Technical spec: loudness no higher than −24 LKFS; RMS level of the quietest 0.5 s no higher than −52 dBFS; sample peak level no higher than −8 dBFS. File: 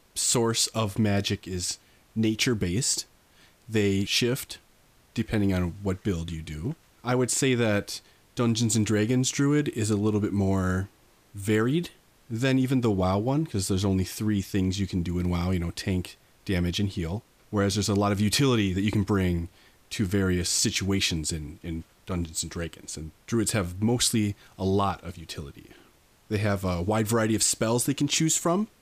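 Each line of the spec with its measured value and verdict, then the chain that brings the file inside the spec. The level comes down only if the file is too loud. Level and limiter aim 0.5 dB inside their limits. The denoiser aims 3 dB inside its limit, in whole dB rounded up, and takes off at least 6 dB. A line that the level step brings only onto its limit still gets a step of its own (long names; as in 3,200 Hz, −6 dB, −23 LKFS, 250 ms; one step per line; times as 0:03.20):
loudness −26.5 LKFS: in spec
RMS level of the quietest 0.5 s −60 dBFS: in spec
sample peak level −11.0 dBFS: in spec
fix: no processing needed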